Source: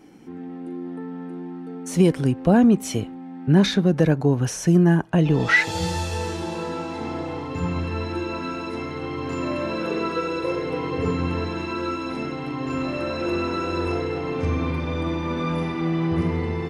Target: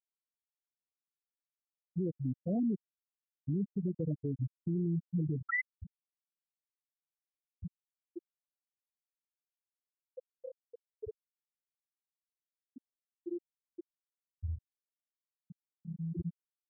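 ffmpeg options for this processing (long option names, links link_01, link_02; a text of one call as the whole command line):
ffmpeg -i in.wav -af "afftfilt=real='re*gte(hypot(re,im),0.708)':imag='im*gte(hypot(re,im),0.708)':win_size=1024:overlap=0.75,alimiter=limit=-17.5dB:level=0:latency=1:release=73,volume=-9dB" out.wav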